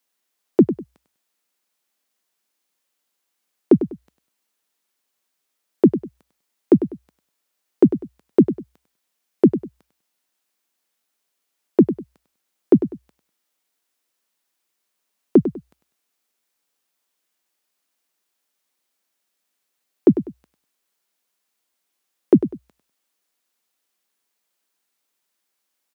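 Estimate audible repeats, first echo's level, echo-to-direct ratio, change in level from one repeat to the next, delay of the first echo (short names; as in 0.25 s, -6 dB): 2, -11.5 dB, -11.0 dB, -11.5 dB, 99 ms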